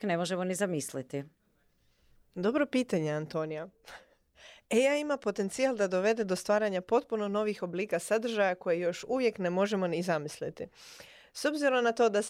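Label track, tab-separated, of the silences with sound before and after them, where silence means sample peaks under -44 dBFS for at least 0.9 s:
1.240000	2.360000	silence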